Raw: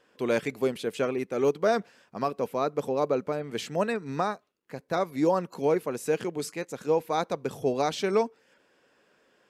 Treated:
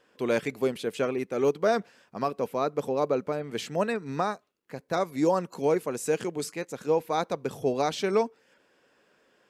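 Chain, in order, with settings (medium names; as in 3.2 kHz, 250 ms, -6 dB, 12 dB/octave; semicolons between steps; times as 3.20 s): 4.27–6.44 s: dynamic bell 7.6 kHz, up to +6 dB, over -57 dBFS, Q 1.4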